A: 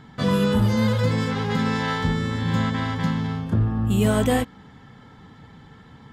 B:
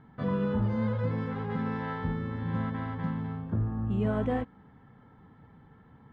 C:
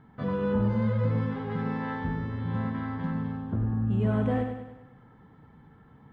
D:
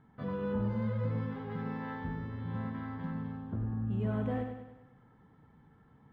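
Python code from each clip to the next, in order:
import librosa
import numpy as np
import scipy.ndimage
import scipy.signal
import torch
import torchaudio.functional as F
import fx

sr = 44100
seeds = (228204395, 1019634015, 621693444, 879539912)

y1 = scipy.signal.sosfilt(scipy.signal.butter(2, 1600.0, 'lowpass', fs=sr, output='sos'), x)
y1 = F.gain(torch.from_numpy(y1), -8.5).numpy()
y2 = fx.echo_feedback(y1, sr, ms=99, feedback_pct=51, wet_db=-6.5)
y3 = np.interp(np.arange(len(y2)), np.arange(len(y2))[::2], y2[::2])
y3 = F.gain(torch.from_numpy(y3), -7.0).numpy()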